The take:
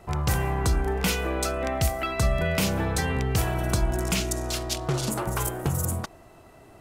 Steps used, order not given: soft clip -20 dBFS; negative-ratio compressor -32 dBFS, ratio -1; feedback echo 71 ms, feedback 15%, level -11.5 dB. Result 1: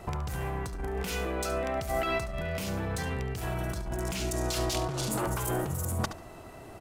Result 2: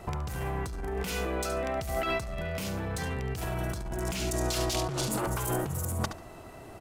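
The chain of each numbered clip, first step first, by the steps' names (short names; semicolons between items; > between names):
soft clip > negative-ratio compressor > feedback echo; feedback echo > soft clip > negative-ratio compressor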